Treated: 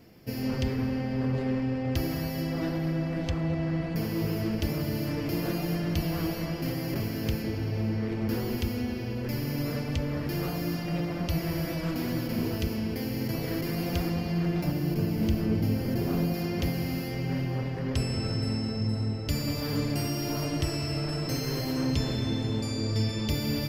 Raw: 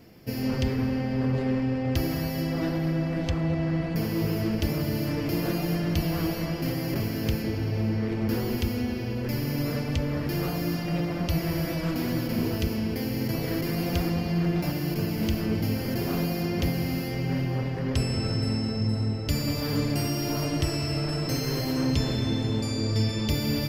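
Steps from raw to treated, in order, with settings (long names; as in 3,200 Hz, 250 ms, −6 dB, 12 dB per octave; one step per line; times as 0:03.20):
0:14.64–0:16.34: tilt shelving filter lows +3.5 dB, about 720 Hz
level −2.5 dB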